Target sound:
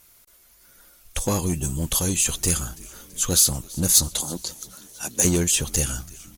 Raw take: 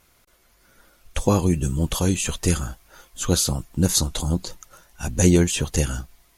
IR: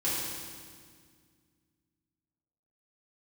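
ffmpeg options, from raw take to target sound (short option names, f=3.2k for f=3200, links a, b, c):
-filter_complex "[0:a]asettb=1/sr,asplit=3[a][b][c];[a]atrim=end=4.084[d];[b]atrim=start=4.08:end=5.25,asetpts=PTS-STARTPTS,afade=t=in:d=0.004:c=qsin,afade=t=out:st=1.166:d=0.004:c=qsin,highpass=250[e];[c]atrim=start=5.246[f];[d][e]acrossfade=d=0.004:c1=hsin:c2=qsin[g];[g][f]acrossfade=d=0.004:c1=qsin:c2=hsin,asplit=2[h][i];[i]aeval=exprs='0.126*(abs(mod(val(0)/0.126+3,4)-2)-1)':c=same,volume=-9dB[j];[h][j]amix=inputs=2:normalize=0,asplit=6[k][l][m][n][o][p];[l]adelay=332,afreqshift=-130,volume=-22dB[q];[m]adelay=664,afreqshift=-260,volume=-26dB[r];[n]adelay=996,afreqshift=-390,volume=-30dB[s];[o]adelay=1328,afreqshift=-520,volume=-34dB[t];[p]adelay=1660,afreqshift=-650,volume=-38.1dB[u];[k][q][r][s][t][u]amix=inputs=6:normalize=0,crystalizer=i=2.5:c=0,volume=-6dB"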